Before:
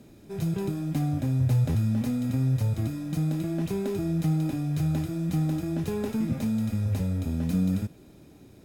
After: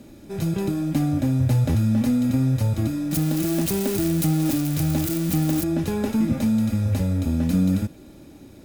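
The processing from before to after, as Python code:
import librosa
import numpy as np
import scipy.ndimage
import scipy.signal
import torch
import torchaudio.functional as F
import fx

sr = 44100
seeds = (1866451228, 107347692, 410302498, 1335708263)

y = fx.crossing_spikes(x, sr, level_db=-24.0, at=(3.11, 5.64))
y = y + 0.34 * np.pad(y, (int(3.5 * sr / 1000.0), 0))[:len(y)]
y = y * librosa.db_to_amplitude(6.0)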